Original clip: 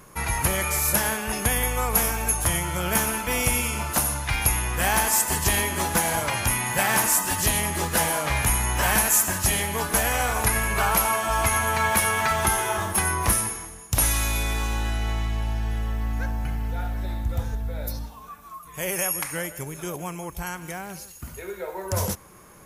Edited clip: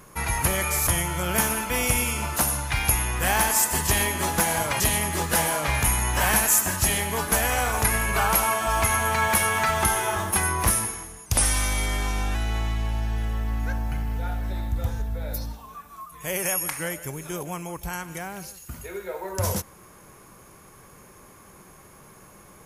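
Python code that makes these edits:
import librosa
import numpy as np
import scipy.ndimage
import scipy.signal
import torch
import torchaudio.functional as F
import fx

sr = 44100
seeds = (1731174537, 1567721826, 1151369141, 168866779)

y = fx.edit(x, sr, fx.cut(start_s=0.87, length_s=1.57),
    fx.cut(start_s=6.37, length_s=1.05),
    fx.speed_span(start_s=13.88, length_s=1.0, speed=0.92), tone=tone)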